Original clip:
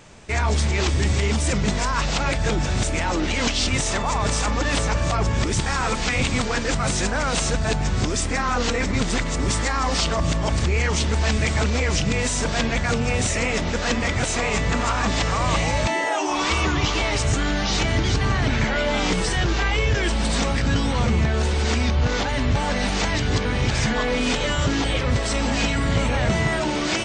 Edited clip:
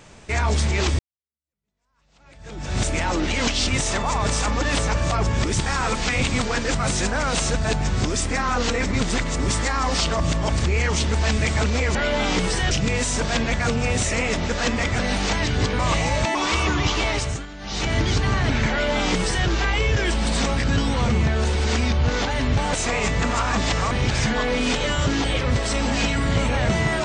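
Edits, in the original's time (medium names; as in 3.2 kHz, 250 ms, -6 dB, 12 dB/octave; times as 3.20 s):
0.99–2.78 s: fade in exponential
14.23–15.41 s: swap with 22.71–23.51 s
15.97–16.33 s: delete
17.09–17.93 s: dip -15.5 dB, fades 0.36 s
18.69–19.45 s: copy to 11.95 s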